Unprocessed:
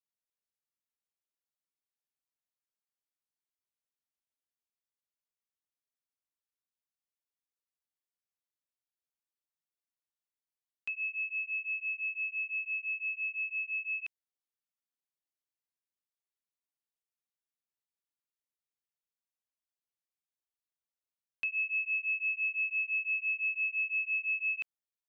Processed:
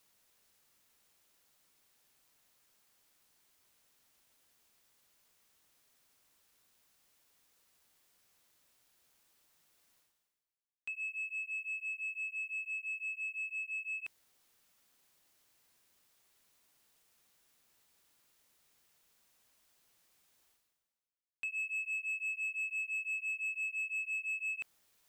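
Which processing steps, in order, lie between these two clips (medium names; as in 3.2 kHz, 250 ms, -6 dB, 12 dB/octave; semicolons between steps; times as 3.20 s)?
reverse; upward compressor, threshold -42 dBFS; reverse; waveshaping leveller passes 1; trim -7 dB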